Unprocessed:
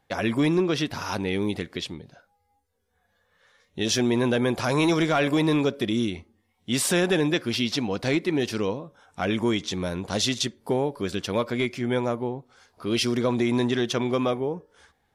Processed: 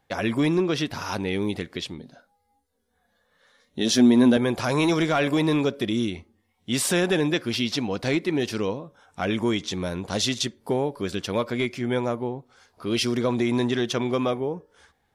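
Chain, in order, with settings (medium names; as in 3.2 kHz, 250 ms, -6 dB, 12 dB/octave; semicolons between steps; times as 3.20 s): 1.98–4.37 s: graphic EQ with 31 bands 100 Hz -11 dB, 250 Hz +11 dB, 630 Hz +3 dB, 2.5 kHz -4 dB, 4 kHz +4 dB, 10 kHz +4 dB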